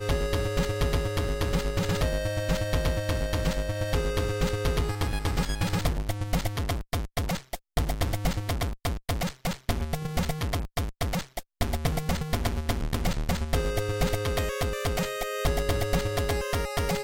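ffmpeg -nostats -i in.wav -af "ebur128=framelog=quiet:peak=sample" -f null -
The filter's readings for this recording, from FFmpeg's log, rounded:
Integrated loudness:
  I:         -29.3 LUFS
  Threshold: -39.3 LUFS
Loudness range:
  LRA:         2.7 LU
  Threshold: -49.5 LUFS
  LRA low:   -31.0 LUFS
  LRA high:  -28.3 LUFS
Sample peak:
  Peak:      -11.1 dBFS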